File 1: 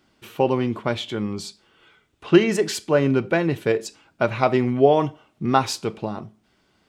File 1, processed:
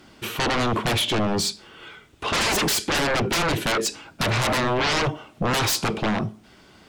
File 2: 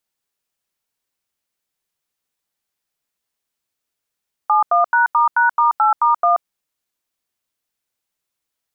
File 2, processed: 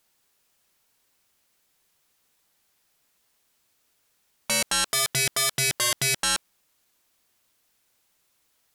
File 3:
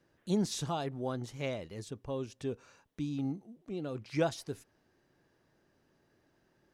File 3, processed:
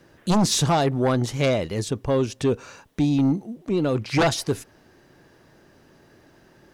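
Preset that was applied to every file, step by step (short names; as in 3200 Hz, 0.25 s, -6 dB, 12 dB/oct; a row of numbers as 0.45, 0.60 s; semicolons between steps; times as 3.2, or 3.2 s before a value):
limiter -10.5 dBFS; sine folder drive 17 dB, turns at -10.5 dBFS; match loudness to -23 LUFS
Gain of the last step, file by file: -8.5, -9.5, -4.0 dB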